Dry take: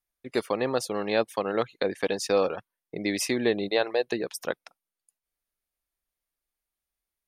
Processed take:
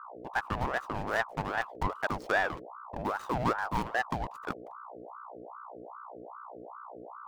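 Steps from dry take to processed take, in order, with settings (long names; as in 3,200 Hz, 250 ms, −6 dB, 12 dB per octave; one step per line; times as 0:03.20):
running median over 41 samples
mains hum 60 Hz, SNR 11 dB
ring modulator whose carrier an LFO sweeps 810 Hz, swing 55%, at 2.5 Hz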